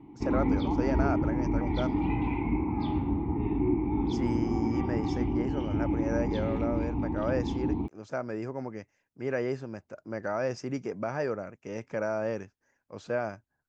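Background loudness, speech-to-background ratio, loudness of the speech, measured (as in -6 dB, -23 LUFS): -30.0 LUFS, -4.5 dB, -34.5 LUFS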